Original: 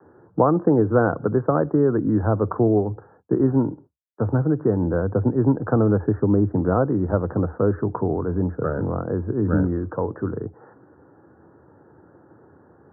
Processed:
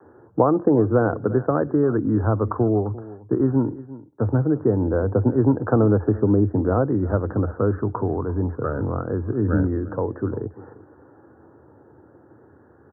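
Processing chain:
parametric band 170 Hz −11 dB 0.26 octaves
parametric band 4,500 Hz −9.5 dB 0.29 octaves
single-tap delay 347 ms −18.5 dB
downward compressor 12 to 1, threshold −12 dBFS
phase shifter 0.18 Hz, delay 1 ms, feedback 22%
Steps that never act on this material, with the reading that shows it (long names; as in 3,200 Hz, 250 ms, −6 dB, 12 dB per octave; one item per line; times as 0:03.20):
parametric band 4,500 Hz: nothing at its input above 1,500 Hz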